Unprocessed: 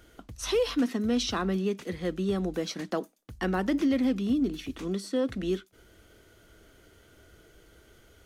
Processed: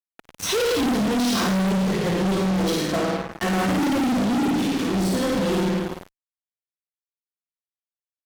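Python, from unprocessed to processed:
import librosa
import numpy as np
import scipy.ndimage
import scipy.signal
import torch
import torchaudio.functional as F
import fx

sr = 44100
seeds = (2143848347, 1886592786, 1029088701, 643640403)

p1 = scipy.signal.sosfilt(scipy.signal.butter(4, 99.0, 'highpass', fs=sr, output='sos'), x)
p2 = fx.low_shelf(p1, sr, hz=150.0, db=9.5, at=(1.7, 2.1))
p3 = fx.lowpass(p2, sr, hz=2200.0, slope=12, at=(2.7, 3.32))
p4 = p3 + fx.room_flutter(p3, sr, wall_m=9.1, rt60_s=0.99, dry=0)
p5 = fx.room_shoebox(p4, sr, seeds[0], volume_m3=360.0, walls='mixed', distance_m=1.6)
p6 = fx.fuzz(p5, sr, gain_db=32.0, gate_db=-35.0)
y = p6 * 10.0 ** (-6.5 / 20.0)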